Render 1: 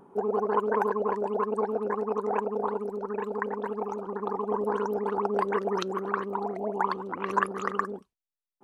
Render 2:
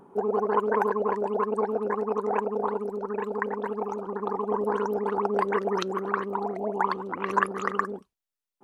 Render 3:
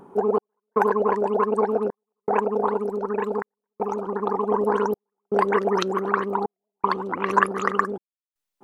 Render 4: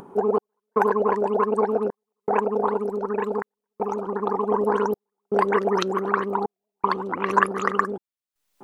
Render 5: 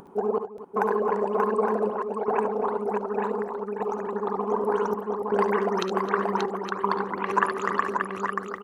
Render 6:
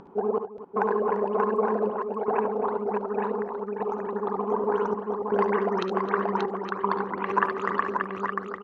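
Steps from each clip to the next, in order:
dynamic EQ 2000 Hz, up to +3 dB, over -45 dBFS, Q 3; gain +1.5 dB
step gate "xx..xxxx" 79 bpm -60 dB; gain +5 dB
upward compressor, threshold -40 dBFS
tapped delay 57/70/263/582/865 ms -14/-9.5/-15/-4.5/-7.5 dB; gain -4.5 dB
air absorption 170 m

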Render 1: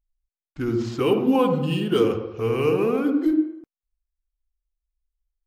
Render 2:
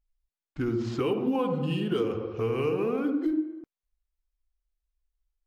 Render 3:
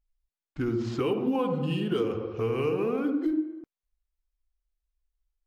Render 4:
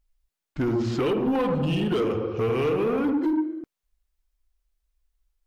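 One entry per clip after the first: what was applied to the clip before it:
high shelf 6200 Hz -8 dB; compressor 3:1, threshold -26 dBFS, peak gain reduction 9.5 dB
nothing audible
soft clip -26 dBFS, distortion -13 dB; gain +7 dB

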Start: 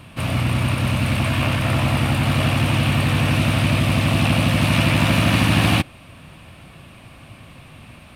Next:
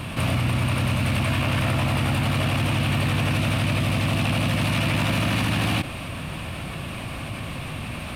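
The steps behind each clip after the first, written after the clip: limiter -15 dBFS, peak gain reduction 10.5 dB; fast leveller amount 50%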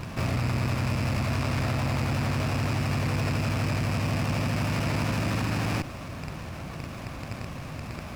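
rattling part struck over -27 dBFS, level -18 dBFS; running maximum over 9 samples; gain -4.5 dB

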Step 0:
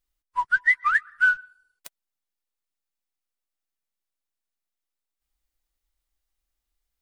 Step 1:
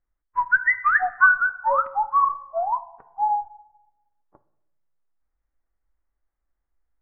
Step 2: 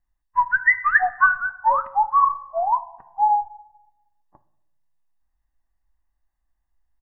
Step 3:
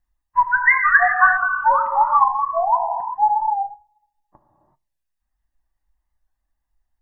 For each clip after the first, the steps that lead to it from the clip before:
steep low-pass 1900 Hz 36 dB/oct; echoes that change speed 0.515 s, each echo -5 st, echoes 2; on a send at -13 dB: reverb RT60 0.85 s, pre-delay 9 ms; on the sum: gain +3 dB
comb 1.1 ms, depth 65%
reverb removal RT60 1.3 s; non-linear reverb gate 0.41 s flat, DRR 2.5 dB; record warp 45 rpm, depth 100 cents; gain +2 dB

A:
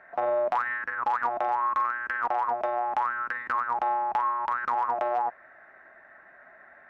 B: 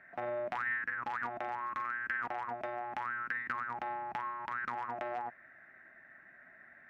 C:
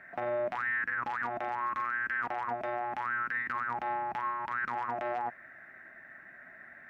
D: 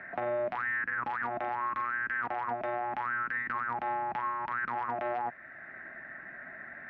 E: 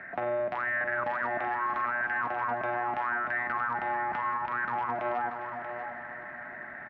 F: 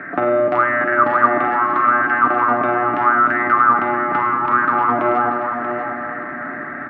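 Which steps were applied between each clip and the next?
ten-band EQ 125 Hz +8 dB, 250 Hz +5 dB, 500 Hz -5 dB, 1000 Hz -8 dB, 2000 Hz +6 dB; gain -6 dB
limiter -29.5 dBFS, peak gain reduction 8 dB; gain +6 dB
air absorption 200 m; three-band squash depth 40%; gain +1.5 dB
regenerating reverse delay 0.202 s, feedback 81%, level -13 dB; on a send: echo 0.635 s -9 dB; on the sum: gain +1.5 dB
small resonant body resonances 300/1200 Hz, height 16 dB, ringing for 20 ms; on a send at -5 dB: reverb RT60 1.8 s, pre-delay 7 ms; on the sum: gain +7 dB

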